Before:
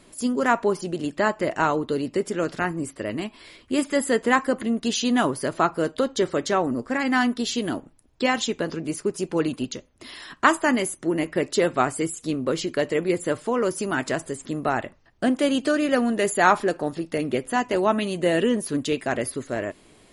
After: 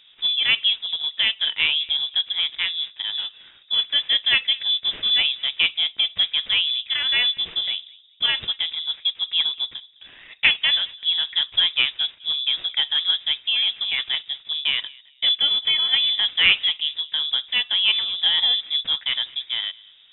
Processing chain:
running median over 15 samples
feedback echo with a low-pass in the loop 209 ms, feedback 27%, low-pass 1,300 Hz, level −22 dB
voice inversion scrambler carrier 3,700 Hz
level +1.5 dB

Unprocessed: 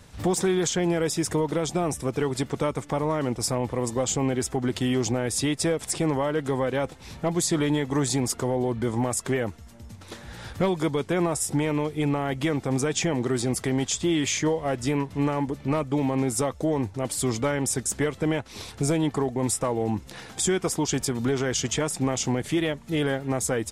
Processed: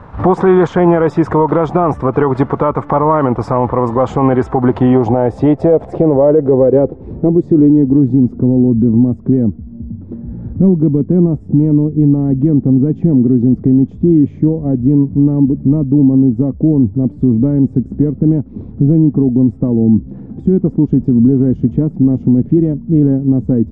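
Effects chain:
low-pass filter sweep 1,100 Hz → 240 Hz, 0:04.39–0:08.27
boost into a limiter +15.5 dB
level −1 dB

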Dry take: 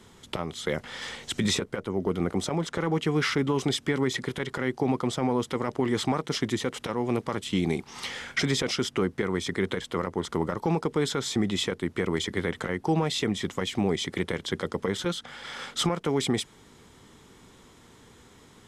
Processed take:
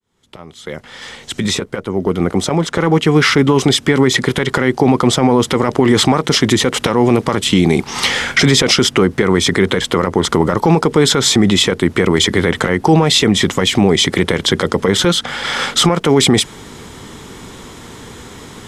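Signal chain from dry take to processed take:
fade in at the beginning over 5.52 s
boost into a limiter +20.5 dB
level −1 dB

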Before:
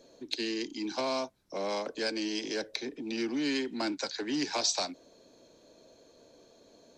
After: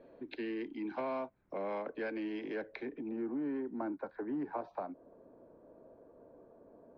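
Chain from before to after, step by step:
low-pass filter 2,200 Hz 24 dB per octave, from 0:03.09 1,300 Hz
downward compressor 1.5 to 1, threshold −45 dBFS, peak gain reduction 6 dB
level +1 dB

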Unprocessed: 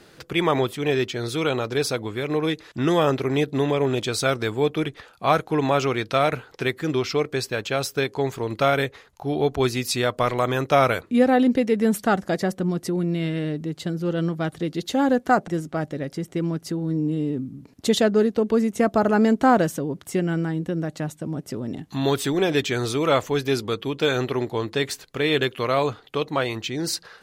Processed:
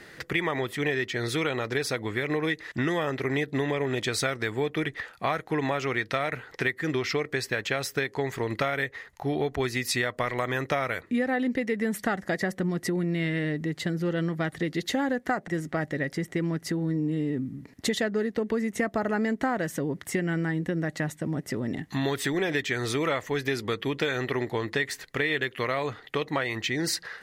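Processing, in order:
parametric band 1,900 Hz +14.5 dB 0.35 octaves
downward compressor 6 to 1, threshold −24 dBFS, peak gain reduction 12.5 dB

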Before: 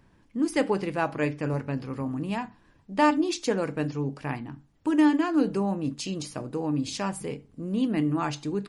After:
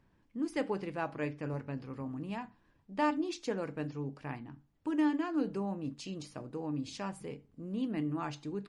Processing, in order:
high-shelf EQ 8,300 Hz −10.5 dB
level −9 dB

